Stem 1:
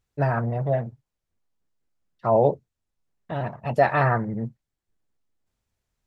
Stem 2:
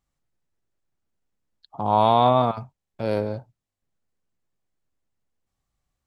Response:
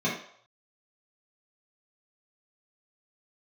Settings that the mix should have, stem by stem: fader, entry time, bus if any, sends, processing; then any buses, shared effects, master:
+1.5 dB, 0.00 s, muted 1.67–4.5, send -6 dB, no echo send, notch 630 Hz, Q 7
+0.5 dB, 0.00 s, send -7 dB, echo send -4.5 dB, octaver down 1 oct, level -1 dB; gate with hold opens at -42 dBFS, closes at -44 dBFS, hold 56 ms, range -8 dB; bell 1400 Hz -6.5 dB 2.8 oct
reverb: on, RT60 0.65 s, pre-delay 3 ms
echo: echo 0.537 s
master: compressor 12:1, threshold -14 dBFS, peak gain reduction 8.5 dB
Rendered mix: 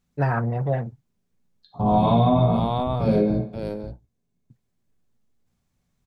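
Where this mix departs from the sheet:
stem 1: send off; stem 2: missing gate with hold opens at -42 dBFS, closes at -44 dBFS, hold 56 ms, range -8 dB

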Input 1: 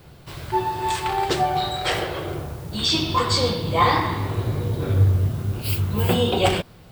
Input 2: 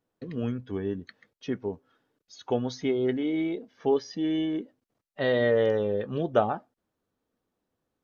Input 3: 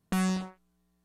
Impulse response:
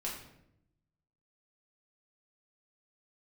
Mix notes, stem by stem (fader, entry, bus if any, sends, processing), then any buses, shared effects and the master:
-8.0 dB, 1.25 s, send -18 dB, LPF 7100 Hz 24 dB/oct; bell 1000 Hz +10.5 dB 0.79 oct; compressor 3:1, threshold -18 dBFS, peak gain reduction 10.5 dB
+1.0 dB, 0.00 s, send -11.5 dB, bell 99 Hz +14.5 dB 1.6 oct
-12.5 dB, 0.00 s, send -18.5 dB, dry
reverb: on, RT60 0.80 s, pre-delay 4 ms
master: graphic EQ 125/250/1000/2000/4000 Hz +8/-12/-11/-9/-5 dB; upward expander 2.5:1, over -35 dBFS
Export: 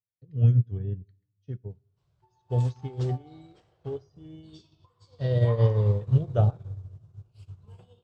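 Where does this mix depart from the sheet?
stem 1: entry 1.25 s -> 1.70 s; stem 3: muted

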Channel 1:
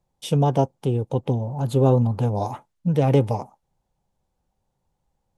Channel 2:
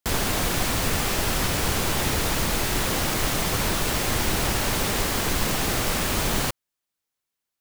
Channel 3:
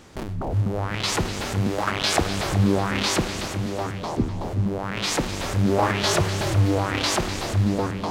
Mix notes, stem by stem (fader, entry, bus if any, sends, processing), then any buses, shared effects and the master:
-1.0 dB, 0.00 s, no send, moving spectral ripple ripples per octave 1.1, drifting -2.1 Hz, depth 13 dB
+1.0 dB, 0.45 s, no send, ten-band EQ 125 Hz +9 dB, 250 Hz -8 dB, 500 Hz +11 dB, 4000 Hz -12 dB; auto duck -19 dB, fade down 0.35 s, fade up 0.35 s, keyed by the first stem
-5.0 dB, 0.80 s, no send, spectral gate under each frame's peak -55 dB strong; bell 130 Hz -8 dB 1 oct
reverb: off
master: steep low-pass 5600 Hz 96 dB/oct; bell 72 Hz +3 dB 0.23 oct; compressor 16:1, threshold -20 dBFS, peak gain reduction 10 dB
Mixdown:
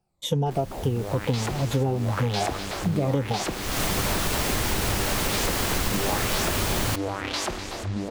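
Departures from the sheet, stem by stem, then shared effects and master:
stem 2: missing ten-band EQ 125 Hz +9 dB, 250 Hz -8 dB, 500 Hz +11 dB, 4000 Hz -12 dB; stem 3: entry 0.80 s -> 0.30 s; master: missing steep low-pass 5600 Hz 96 dB/oct

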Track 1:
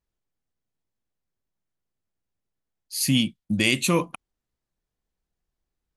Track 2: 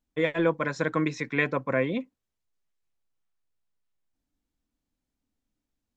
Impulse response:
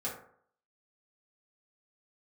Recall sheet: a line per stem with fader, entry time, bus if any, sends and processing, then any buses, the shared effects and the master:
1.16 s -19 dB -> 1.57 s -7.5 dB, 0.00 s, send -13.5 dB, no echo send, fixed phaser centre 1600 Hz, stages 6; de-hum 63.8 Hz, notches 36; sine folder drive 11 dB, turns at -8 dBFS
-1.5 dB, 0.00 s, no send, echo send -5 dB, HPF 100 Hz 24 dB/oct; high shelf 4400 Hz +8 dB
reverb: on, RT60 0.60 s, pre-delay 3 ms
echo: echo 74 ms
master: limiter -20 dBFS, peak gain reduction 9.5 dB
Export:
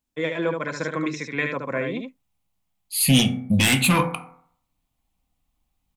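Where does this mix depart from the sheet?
stem 1: send -13.5 dB -> -5.5 dB; master: missing limiter -20 dBFS, peak gain reduction 9.5 dB

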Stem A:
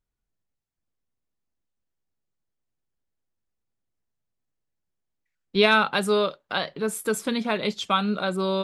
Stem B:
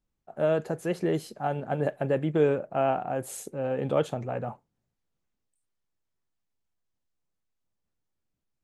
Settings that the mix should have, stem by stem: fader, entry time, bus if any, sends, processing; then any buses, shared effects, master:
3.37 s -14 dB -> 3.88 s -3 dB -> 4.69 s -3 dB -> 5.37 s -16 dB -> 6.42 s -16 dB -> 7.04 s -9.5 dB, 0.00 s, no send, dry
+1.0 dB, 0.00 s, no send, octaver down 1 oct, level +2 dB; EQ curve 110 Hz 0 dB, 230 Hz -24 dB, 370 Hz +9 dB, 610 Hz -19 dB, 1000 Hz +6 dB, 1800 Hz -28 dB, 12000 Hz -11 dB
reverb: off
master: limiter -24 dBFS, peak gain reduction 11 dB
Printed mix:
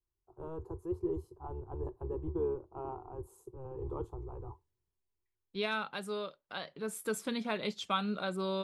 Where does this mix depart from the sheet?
stem B +1.0 dB -> -10.0 dB; master: missing limiter -24 dBFS, peak gain reduction 11 dB

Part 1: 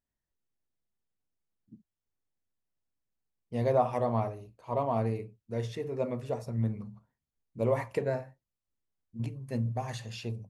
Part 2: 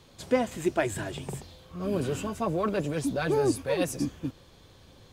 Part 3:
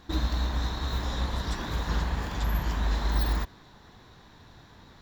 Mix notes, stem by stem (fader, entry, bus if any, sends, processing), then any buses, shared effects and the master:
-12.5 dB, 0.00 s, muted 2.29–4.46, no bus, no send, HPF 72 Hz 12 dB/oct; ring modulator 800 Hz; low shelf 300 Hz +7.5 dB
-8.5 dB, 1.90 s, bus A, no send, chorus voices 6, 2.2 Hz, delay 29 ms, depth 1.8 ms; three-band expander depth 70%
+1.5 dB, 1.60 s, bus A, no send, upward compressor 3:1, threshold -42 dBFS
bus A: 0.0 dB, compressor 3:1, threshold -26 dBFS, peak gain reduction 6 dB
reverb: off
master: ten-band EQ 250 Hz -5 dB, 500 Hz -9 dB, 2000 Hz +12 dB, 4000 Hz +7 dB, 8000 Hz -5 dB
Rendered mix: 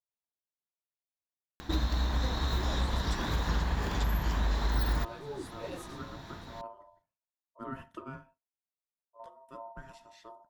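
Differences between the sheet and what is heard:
stem 2 -8.5 dB -> -16.0 dB; master: missing ten-band EQ 250 Hz -5 dB, 500 Hz -9 dB, 2000 Hz +12 dB, 4000 Hz +7 dB, 8000 Hz -5 dB

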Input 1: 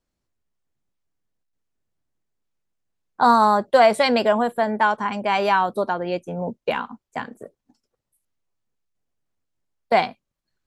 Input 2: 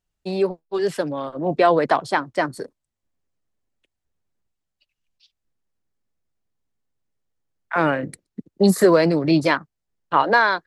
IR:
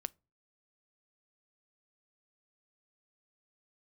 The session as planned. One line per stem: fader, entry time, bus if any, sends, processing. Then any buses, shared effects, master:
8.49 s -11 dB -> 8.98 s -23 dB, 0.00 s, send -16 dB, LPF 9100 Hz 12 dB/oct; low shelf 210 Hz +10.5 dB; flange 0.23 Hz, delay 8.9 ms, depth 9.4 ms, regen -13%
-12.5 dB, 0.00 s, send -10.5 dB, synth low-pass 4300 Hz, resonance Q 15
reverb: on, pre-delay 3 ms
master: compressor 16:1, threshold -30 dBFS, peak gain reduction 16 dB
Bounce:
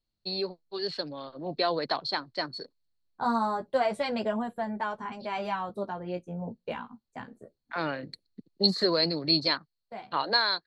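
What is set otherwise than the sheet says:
stem 2: send off; master: missing compressor 16:1, threshold -30 dBFS, peak gain reduction 16 dB

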